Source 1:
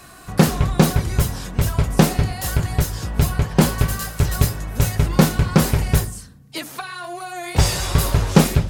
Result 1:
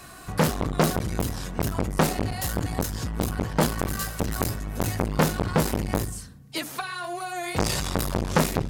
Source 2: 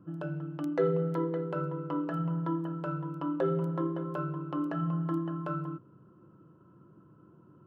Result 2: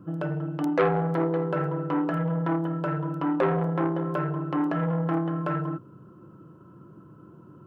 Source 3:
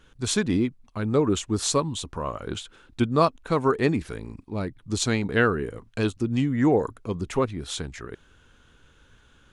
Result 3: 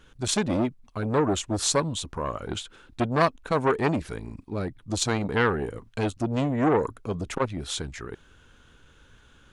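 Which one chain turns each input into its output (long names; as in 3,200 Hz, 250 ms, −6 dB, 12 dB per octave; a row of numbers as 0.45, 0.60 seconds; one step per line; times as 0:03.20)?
saturating transformer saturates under 1,100 Hz
loudness normalisation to −27 LKFS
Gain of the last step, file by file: −1.0, +8.5, +1.5 decibels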